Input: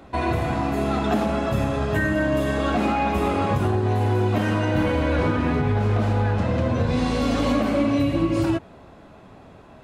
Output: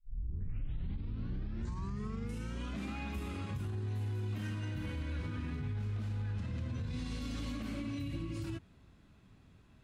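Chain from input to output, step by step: tape start at the beginning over 2.97 s; passive tone stack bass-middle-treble 6-0-2; limiter -34.5 dBFS, peak gain reduction 10.5 dB; gain +3.5 dB

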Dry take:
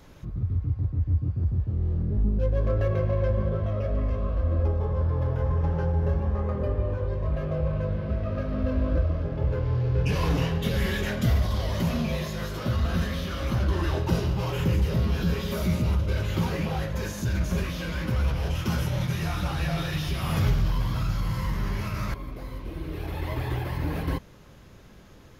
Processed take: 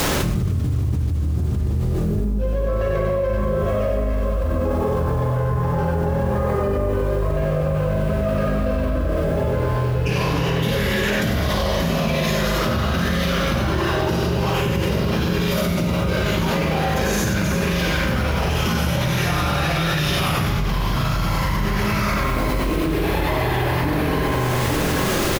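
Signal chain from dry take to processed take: low shelf 130 Hz -8.5 dB; notches 60/120/180/240 Hz; tapped delay 53/91/96/208/223/860 ms -6.5/-9/-3.5/-14/-15.5/-17.5 dB; bit-crush 9-bit; spring tank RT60 1.2 s, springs 40 ms, chirp 50 ms, DRR 5.5 dB; fast leveller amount 100%

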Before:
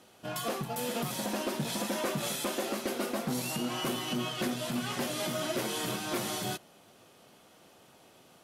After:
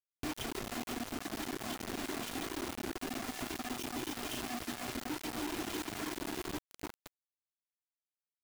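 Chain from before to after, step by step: vocal tract filter i; Schmitt trigger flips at -57 dBFS; notches 50/100/150/200/250 Hz; rotary speaker horn 6.3 Hz, later 0.85 Hz, at 1.12; on a send at -5.5 dB: reverb RT60 2.3 s, pre-delay 53 ms; on the sum: reverb removal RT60 1 s; comb 2.9 ms, depth 67%; frequency-shifting echo 0.331 s, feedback 40%, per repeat +34 Hz, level -17 dB; compressor 8:1, threshold -54 dBFS, peak gain reduction 15 dB; bit-crush 9-bit; gain +15.5 dB

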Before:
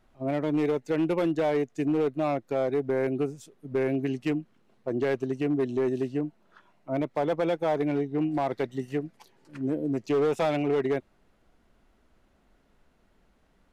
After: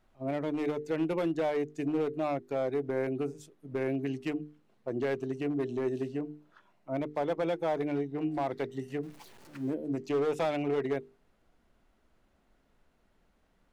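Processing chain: 9.03–9.74 zero-crossing step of -46 dBFS; notches 50/100/150/200/250/300/350/400/450 Hz; gain -4 dB

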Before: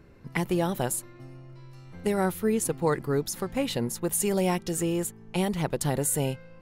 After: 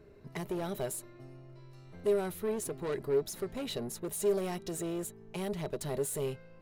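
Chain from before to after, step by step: soft clip -28 dBFS, distortion -8 dB; small resonant body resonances 410/620/3900 Hz, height 14 dB, ringing for 90 ms; gain -6 dB

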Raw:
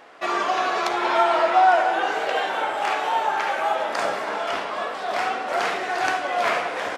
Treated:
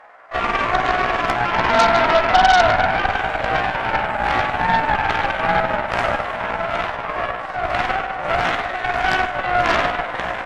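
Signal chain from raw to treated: band shelf 1100 Hz +13.5 dB 2.3 oct; granular stretch 1.5×, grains 0.1 s; added harmonics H 8 -15 dB, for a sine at 7 dBFS; gain -9 dB

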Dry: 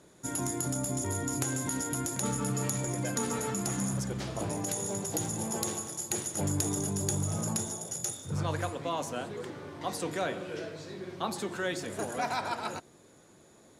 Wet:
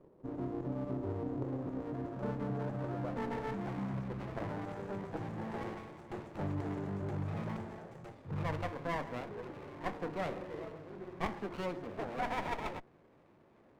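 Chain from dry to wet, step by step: low-pass sweep 510 Hz -> 1200 Hz, 1.42–4.13; running maximum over 17 samples; gain -5.5 dB

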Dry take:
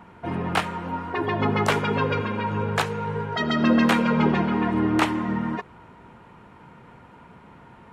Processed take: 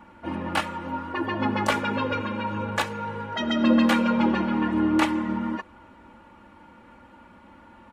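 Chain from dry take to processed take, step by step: comb 3.5 ms, depth 92%; gain -4 dB

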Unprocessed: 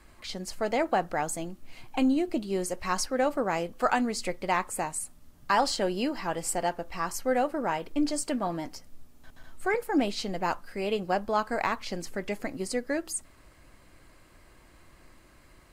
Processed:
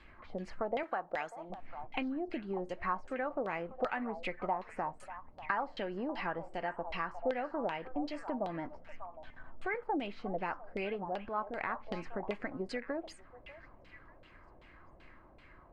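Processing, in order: 0.83–1.5 RIAA curve recording; compressor 6:1, threshold -32 dBFS, peak gain reduction 13 dB; on a send: delay with a stepping band-pass 0.592 s, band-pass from 860 Hz, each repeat 1.4 oct, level -9 dB; 11.04–11.82 on the sum: transient shaper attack -8 dB, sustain +2 dB; LFO low-pass saw down 2.6 Hz 570–3400 Hz; gain -3 dB

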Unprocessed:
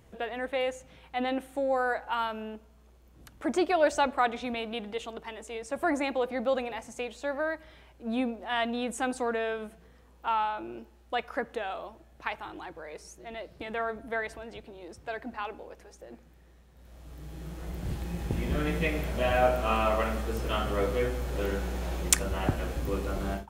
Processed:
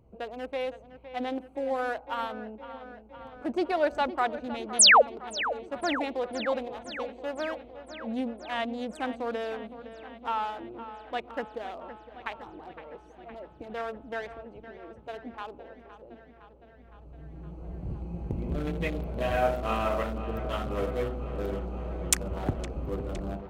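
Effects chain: Wiener smoothing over 25 samples; painted sound fall, 4.79–5.02, 450–11000 Hz -14 dBFS; dark delay 0.512 s, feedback 70%, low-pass 3600 Hz, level -13 dB; gain -1.5 dB

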